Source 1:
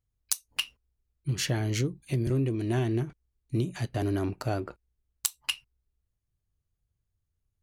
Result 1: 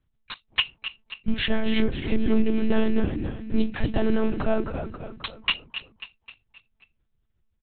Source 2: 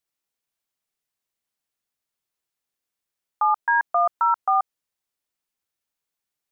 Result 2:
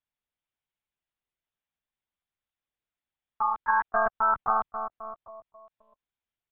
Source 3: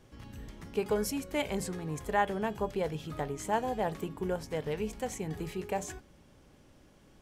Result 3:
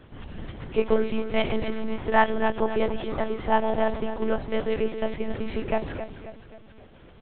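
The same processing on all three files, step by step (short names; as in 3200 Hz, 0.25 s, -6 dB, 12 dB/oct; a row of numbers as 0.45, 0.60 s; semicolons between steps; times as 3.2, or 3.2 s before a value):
frequency-shifting echo 0.266 s, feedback 49%, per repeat -34 Hz, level -10 dB; monotone LPC vocoder at 8 kHz 220 Hz; match loudness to -27 LUFS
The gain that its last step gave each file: +8.0, -4.0, +8.5 dB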